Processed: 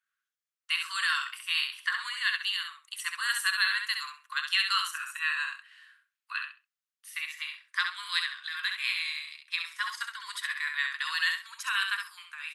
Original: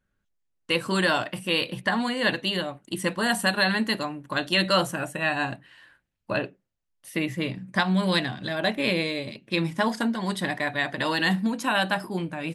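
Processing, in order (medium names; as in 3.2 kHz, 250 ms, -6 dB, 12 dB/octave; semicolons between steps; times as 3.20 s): steep high-pass 1.1 kHz 72 dB/octave; on a send: feedback delay 66 ms, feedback 20%, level -5.5 dB; on the sum: trim -3 dB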